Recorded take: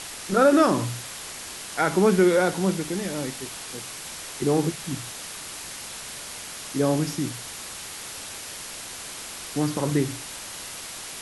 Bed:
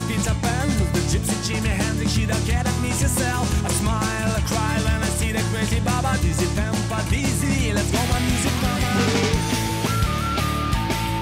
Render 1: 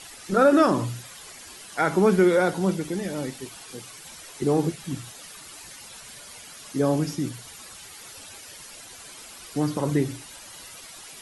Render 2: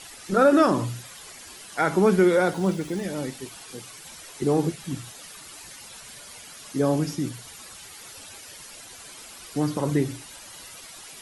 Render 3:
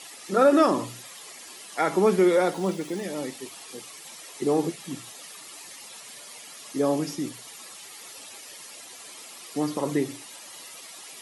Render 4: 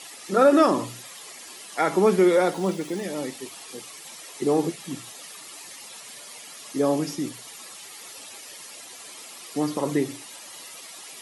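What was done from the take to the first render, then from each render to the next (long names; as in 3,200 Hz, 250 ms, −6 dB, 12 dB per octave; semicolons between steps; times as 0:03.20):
broadband denoise 11 dB, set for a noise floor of −38 dBFS
0:02.53–0:03.04: running median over 3 samples
high-pass filter 240 Hz 12 dB per octave; notch filter 1,500 Hz, Q 7.9
level +1.5 dB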